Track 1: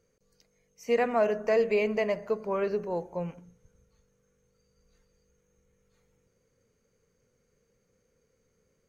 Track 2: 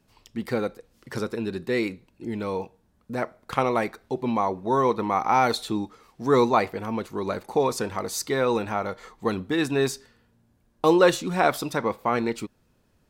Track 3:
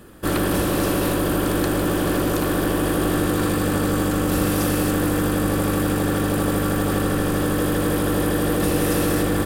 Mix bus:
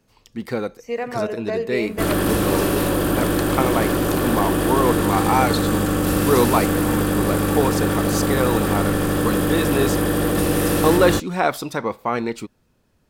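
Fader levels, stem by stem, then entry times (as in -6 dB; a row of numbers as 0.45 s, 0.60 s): -0.5 dB, +1.5 dB, +1.0 dB; 0.00 s, 0.00 s, 1.75 s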